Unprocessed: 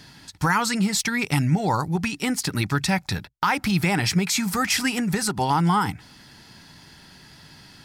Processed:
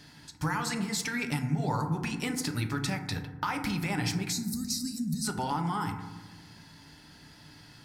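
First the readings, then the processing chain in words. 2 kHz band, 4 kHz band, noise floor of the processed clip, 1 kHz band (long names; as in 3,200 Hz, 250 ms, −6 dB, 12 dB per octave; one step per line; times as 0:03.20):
−10.0 dB, −9.0 dB, −54 dBFS, −10.0 dB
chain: gain on a spectral selection 0:04.32–0:05.24, 270–3,700 Hz −29 dB
downward compressor, threshold −22 dBFS, peak gain reduction 7 dB
feedback delay network reverb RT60 1.2 s, low-frequency decay 1.45×, high-frequency decay 0.3×, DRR 4.5 dB
level −6.5 dB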